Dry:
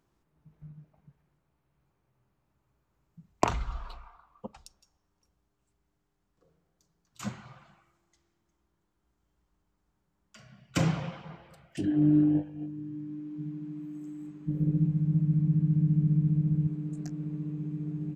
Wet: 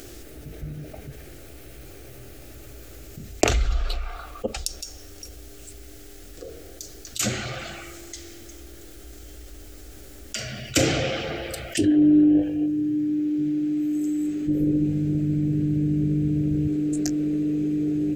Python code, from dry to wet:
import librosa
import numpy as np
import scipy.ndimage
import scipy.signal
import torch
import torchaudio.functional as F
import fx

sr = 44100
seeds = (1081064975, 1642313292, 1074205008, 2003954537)

y = fx.high_shelf(x, sr, hz=5300.0, db=7.0)
y = fx.fixed_phaser(y, sr, hz=410.0, stages=4)
y = fx.env_flatten(y, sr, amount_pct=50)
y = y * librosa.db_to_amplitude(8.0)